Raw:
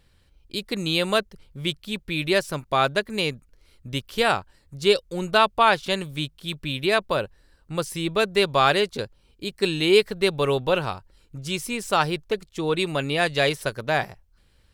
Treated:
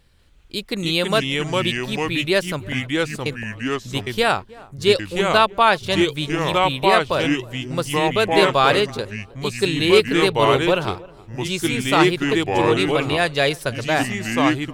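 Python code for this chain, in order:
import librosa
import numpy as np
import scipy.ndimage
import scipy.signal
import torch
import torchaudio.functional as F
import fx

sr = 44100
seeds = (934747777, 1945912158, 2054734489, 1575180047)

y = fx.gate_flip(x, sr, shuts_db=-22.0, range_db=-28, at=(2.68, 3.26))
y = fx.echo_pitch(y, sr, ms=192, semitones=-3, count=2, db_per_echo=-3.0)
y = fx.echo_filtered(y, sr, ms=314, feedback_pct=30, hz=1100.0, wet_db=-21)
y = F.gain(torch.from_numpy(y), 2.5).numpy()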